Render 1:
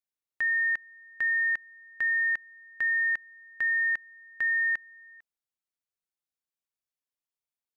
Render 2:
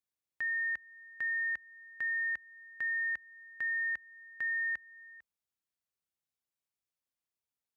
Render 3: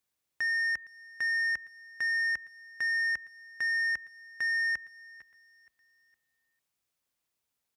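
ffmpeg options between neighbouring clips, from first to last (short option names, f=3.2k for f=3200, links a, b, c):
-af "alimiter=level_in=4.5dB:limit=-24dB:level=0:latency=1:release=261,volume=-4.5dB,highpass=f=42:w=0.5412,highpass=f=42:w=1.3066,lowshelf=f=190:g=6,volume=-1.5dB"
-af "asoftclip=type=tanh:threshold=-35dB,aecho=1:1:462|924|1386:0.0944|0.0397|0.0167,volume=8.5dB"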